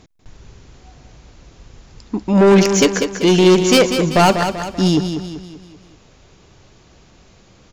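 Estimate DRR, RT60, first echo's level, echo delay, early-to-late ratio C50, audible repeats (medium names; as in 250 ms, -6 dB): no reverb, no reverb, -8.0 dB, 193 ms, no reverb, 5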